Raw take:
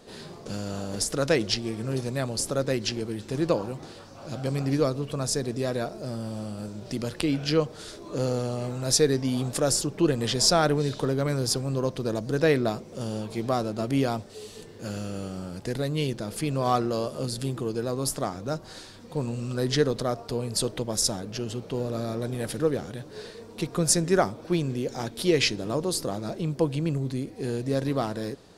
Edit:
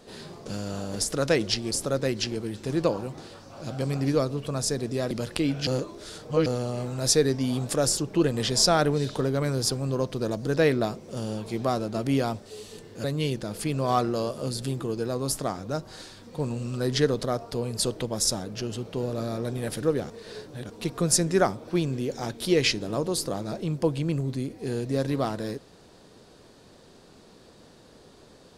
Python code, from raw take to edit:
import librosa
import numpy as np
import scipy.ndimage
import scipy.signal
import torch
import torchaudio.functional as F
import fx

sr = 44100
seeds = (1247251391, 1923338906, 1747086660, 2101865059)

y = fx.edit(x, sr, fx.cut(start_s=1.71, length_s=0.65),
    fx.cut(start_s=5.76, length_s=1.19),
    fx.reverse_span(start_s=7.51, length_s=0.79),
    fx.cut(start_s=14.88, length_s=0.93),
    fx.reverse_span(start_s=22.87, length_s=0.6), tone=tone)